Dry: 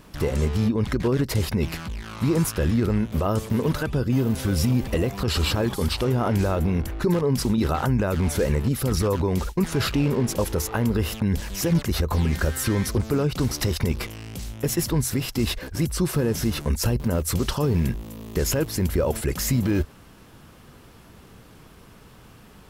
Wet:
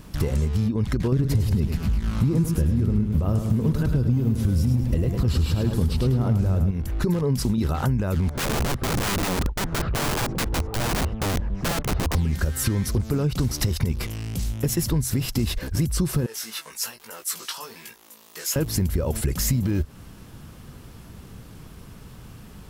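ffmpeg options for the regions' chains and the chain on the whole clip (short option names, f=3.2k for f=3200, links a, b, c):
-filter_complex "[0:a]asettb=1/sr,asplit=3[a][b][c];[a]atrim=end=1.124[d];[b]atrim=start=1.12:end=6.71,asetpts=PTS-STARTPTS,afade=t=in:d=0.004:c=qsin,afade=t=out:st=5.586:d=0.004:c=qsin,lowshelf=f=440:g=8.5,asoftclip=type=hard:threshold=-7.5dB,aecho=1:1:105|210|315|420|525:0.447|0.179|0.0715|0.0286|0.0114,atrim=end_sample=246519[e];[c]atrim=start=6.706[f];[d][e]acrossfade=d=0.004:c1=hsin:c2=qsin[g];[g][f]acrossfade=d=0.004:c1=qsin:c2=hsin,asettb=1/sr,asplit=3[h][i][j];[h]atrim=end=8.294[k];[i]atrim=start=8.29:end=12.15,asetpts=PTS-STARTPTS,afade=t=in:d=0.004:c=qsin,afade=t=out:st=3.856:d=0.004:c=qsin,lowpass=1k,aeval=exprs='(mod(11.9*val(0)+1,2)-1)/11.9':c=same[l];[j]atrim=start=12.146[m];[k][l]acrossfade=d=0.004:c1=hsin:c2=qsin[n];[n][m]acrossfade=d=0.004:c1=qsin:c2=hsin,asettb=1/sr,asplit=3[o][p][q];[o]atrim=end=16.264[r];[p]atrim=start=16.26:end=18.56,asetpts=PTS-STARTPTS,afade=t=in:d=0.004:c=qsin,afade=t=out:st=2.296:d=0.004:c=qsin,highpass=1.1k,flanger=delay=2.1:depth=4.3:regen=46:speed=1.2:shape=sinusoidal,asplit=2[s][t];[t]adelay=18,volume=-4dB[u];[s][u]amix=inputs=2:normalize=0,atrim=end_sample=101430[v];[q]atrim=start=18.556[w];[r][v]acrossfade=d=0.004:c1=hsin:c2=qsin[x];[x][w]acrossfade=d=0.004:c1=qsin:c2=hsin,bass=f=250:g=8,treble=f=4k:g=4,acompressor=threshold=-19dB:ratio=6"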